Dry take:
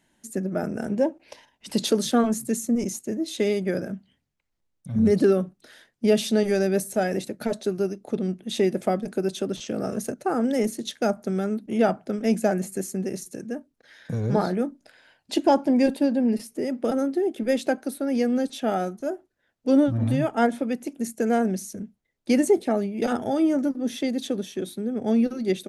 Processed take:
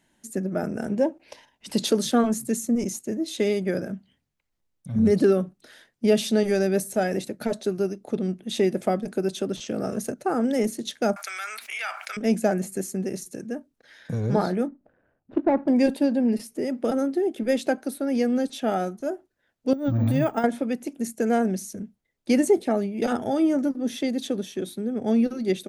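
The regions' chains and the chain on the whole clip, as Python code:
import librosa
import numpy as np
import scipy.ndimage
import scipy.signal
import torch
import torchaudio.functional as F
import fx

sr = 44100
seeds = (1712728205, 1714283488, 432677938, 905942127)

y = fx.chain(x, sr, fx.highpass(hz=1200.0, slope=24),
    fx.peak_eq(hz=2300.0, db=11.0, octaves=0.27),
    fx.env_flatten(amount_pct=70), at=(11.16, 12.17))
y = fx.chain(y, sr, fx.median_filter(points=41),
    fx.lowpass(hz=1400.0, slope=12), at=(14.68, 15.68))
y = fx.chain(y, sr, fx.resample_bad(factor=2, down='none', up='hold'),
    fx.over_compress(threshold_db=-22.0, ratio=-0.5),
    fx.notch(hz=3000.0, q=15.0), at=(19.73, 20.44))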